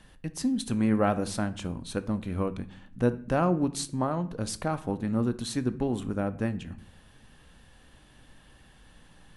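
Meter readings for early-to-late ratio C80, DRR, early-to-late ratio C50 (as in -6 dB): 20.0 dB, 11.0 dB, 16.5 dB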